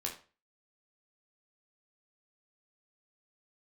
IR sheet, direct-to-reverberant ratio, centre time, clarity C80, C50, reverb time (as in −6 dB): −1.0 dB, 21 ms, 14.0 dB, 9.0 dB, 0.35 s